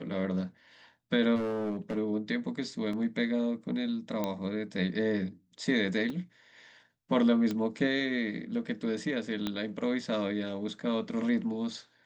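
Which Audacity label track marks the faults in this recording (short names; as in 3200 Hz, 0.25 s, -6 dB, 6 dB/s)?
1.350000	1.980000	clipped -28.5 dBFS
2.930000	2.930000	gap 3.1 ms
4.240000	4.240000	pop -17 dBFS
6.100000	6.100000	gap 2.3 ms
7.510000	7.510000	pop -20 dBFS
9.470000	9.470000	pop -18 dBFS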